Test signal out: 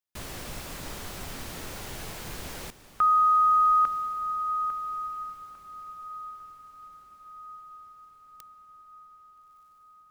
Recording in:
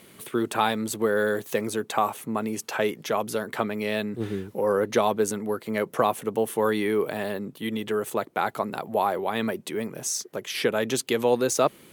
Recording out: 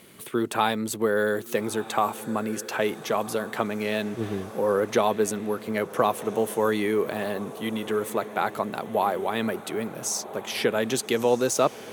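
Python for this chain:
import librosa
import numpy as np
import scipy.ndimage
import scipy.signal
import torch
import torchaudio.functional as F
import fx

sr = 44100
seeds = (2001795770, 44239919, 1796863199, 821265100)

y = fx.echo_diffused(x, sr, ms=1319, feedback_pct=54, wet_db=-15)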